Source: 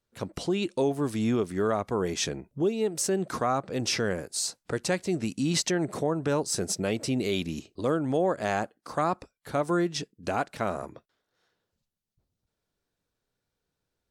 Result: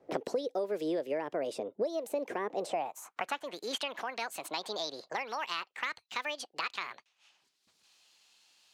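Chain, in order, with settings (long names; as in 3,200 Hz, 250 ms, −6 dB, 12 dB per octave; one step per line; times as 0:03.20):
gliding playback speed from 139% → 184%
band-pass filter sweep 460 Hz → 4,200 Hz, 0:02.52–0:03.92
multiband upward and downward compressor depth 100%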